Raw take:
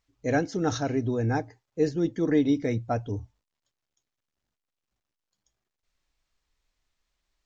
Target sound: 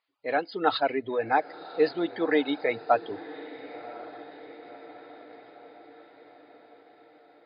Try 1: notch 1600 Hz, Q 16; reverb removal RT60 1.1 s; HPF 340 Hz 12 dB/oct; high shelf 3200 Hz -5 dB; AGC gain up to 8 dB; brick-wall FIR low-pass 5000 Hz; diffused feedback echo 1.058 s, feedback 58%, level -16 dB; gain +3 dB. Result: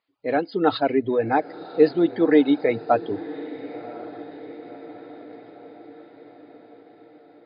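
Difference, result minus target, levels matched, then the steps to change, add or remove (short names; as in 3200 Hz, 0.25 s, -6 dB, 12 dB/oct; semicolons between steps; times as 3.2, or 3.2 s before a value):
250 Hz band +4.5 dB
change: HPF 690 Hz 12 dB/oct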